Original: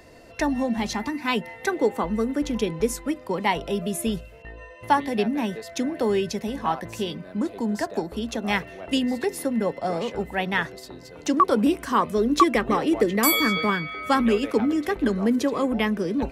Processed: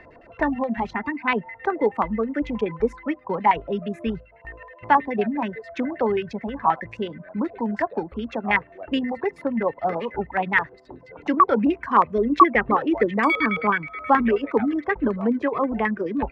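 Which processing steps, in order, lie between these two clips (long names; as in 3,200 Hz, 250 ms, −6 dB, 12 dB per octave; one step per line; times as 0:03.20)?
auto-filter low-pass square 9.4 Hz 990–2,000 Hz
reverb reduction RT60 0.92 s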